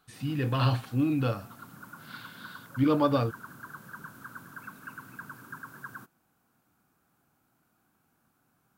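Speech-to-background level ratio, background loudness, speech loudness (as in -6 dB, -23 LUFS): 18.0 dB, -46.0 LUFS, -28.0 LUFS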